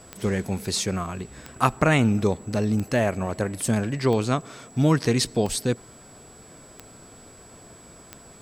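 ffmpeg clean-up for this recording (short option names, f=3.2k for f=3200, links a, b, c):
-af "adeclick=t=4,bandreject=f=7.8k:w=30"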